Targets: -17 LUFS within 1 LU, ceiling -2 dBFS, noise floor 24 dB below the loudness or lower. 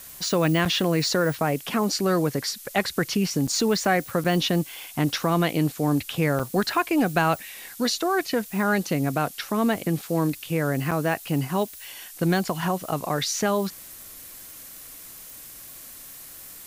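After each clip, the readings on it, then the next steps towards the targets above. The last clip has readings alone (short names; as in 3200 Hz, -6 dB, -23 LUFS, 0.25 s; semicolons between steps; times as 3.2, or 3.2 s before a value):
dropouts 5; longest dropout 6.1 ms; noise floor -43 dBFS; noise floor target -49 dBFS; loudness -24.5 LUFS; peak -8.5 dBFS; loudness target -17.0 LUFS
-> interpolate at 0.65/3.47/4.24/6.39/10.91, 6.1 ms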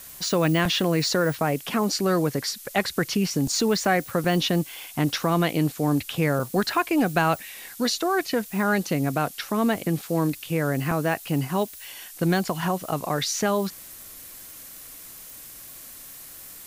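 dropouts 0; noise floor -43 dBFS; noise floor target -49 dBFS
-> denoiser 6 dB, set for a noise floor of -43 dBFS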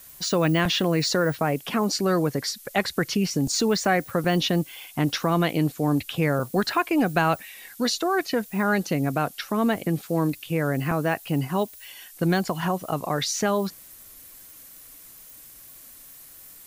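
noise floor -47 dBFS; noise floor target -49 dBFS
-> denoiser 6 dB, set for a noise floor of -47 dBFS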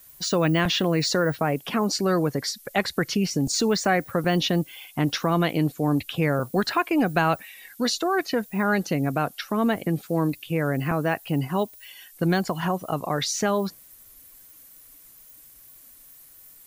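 noise floor -51 dBFS; loudness -24.5 LUFS; peak -8.5 dBFS; loudness target -17.0 LUFS
-> gain +7.5 dB; limiter -2 dBFS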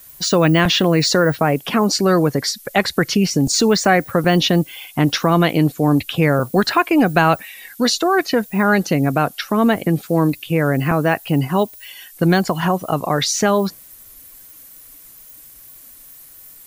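loudness -17.0 LUFS; peak -2.0 dBFS; noise floor -43 dBFS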